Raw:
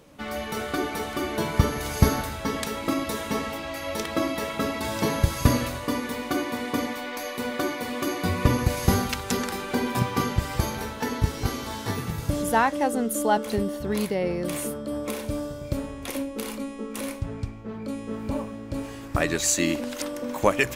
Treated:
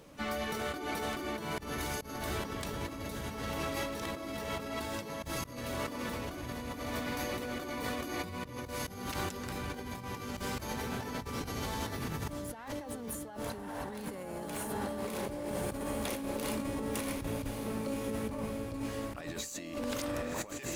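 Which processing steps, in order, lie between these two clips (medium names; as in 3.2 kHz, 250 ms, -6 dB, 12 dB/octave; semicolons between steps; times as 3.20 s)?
echo that smears into a reverb 1145 ms, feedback 45%, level -7 dB; compressor with a negative ratio -32 dBFS, ratio -1; harmony voices +12 st -13 dB; trim -7 dB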